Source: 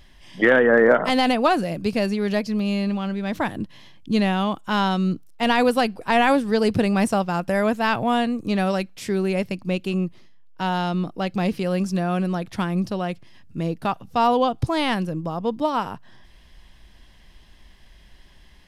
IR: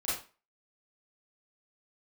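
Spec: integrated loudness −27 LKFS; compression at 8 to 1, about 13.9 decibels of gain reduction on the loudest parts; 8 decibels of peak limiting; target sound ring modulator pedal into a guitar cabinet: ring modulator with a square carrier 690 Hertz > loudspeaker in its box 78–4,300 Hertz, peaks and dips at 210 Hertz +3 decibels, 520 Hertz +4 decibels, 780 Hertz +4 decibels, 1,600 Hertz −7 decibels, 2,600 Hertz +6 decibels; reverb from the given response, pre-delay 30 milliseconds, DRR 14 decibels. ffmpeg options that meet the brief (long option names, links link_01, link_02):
-filter_complex "[0:a]acompressor=threshold=-26dB:ratio=8,alimiter=limit=-23dB:level=0:latency=1,asplit=2[link_01][link_02];[1:a]atrim=start_sample=2205,adelay=30[link_03];[link_02][link_03]afir=irnorm=-1:irlink=0,volume=-19.5dB[link_04];[link_01][link_04]amix=inputs=2:normalize=0,aeval=exprs='val(0)*sgn(sin(2*PI*690*n/s))':channel_layout=same,highpass=78,equalizer=frequency=210:width_type=q:width=4:gain=3,equalizer=frequency=520:width_type=q:width=4:gain=4,equalizer=frequency=780:width_type=q:width=4:gain=4,equalizer=frequency=1600:width_type=q:width=4:gain=-7,equalizer=frequency=2600:width_type=q:width=4:gain=6,lowpass=frequency=4300:width=0.5412,lowpass=frequency=4300:width=1.3066,volume=3.5dB"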